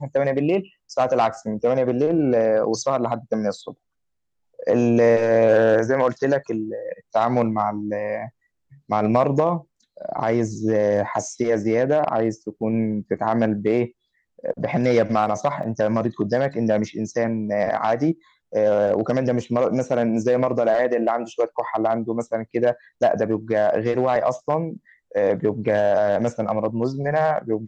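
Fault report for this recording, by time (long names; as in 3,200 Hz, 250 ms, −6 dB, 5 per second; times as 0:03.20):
0:15.63: drop-out 3.3 ms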